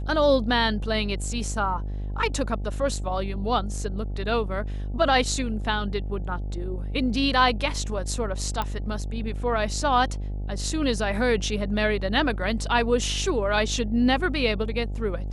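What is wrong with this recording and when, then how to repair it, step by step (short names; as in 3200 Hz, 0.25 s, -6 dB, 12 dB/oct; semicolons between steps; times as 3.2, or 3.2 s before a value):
buzz 50 Hz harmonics 17 -30 dBFS
8.62 pop -14 dBFS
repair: de-click; de-hum 50 Hz, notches 17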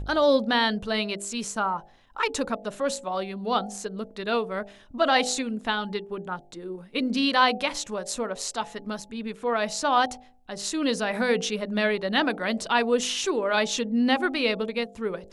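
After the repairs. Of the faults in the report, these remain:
none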